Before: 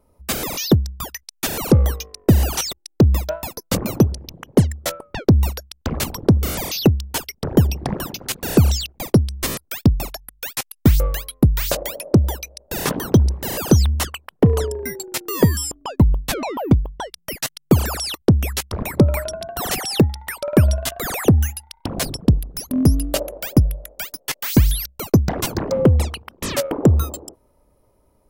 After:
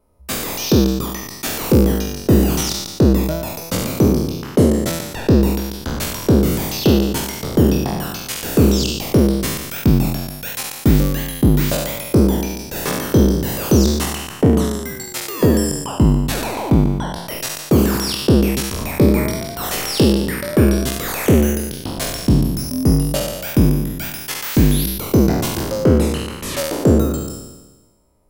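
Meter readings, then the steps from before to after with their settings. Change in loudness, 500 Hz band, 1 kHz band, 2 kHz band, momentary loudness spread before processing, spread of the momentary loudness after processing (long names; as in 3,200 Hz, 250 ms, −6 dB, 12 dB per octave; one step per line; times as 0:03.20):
+2.5 dB, +4.0 dB, +2.5 dB, +2.5 dB, 11 LU, 9 LU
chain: peak hold with a decay on every bin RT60 1.22 s
level −3.5 dB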